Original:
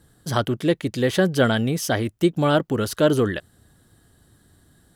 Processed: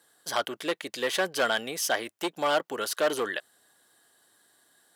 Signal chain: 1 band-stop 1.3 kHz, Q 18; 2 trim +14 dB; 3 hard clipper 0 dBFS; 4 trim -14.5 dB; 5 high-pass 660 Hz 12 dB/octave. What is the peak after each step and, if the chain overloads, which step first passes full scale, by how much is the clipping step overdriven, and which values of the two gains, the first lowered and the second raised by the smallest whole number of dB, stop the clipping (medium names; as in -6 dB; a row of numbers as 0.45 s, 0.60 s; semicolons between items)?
-5.0 dBFS, +9.0 dBFS, 0.0 dBFS, -14.5 dBFS, -11.0 dBFS; step 2, 9.0 dB; step 2 +5 dB, step 4 -5.5 dB